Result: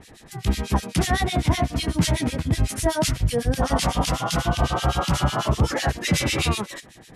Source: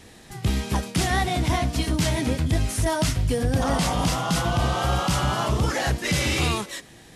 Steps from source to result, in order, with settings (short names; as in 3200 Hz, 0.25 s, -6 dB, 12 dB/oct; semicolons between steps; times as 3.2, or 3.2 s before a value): harmonic tremolo 8 Hz, depth 100%, crossover 1800 Hz; gain +5 dB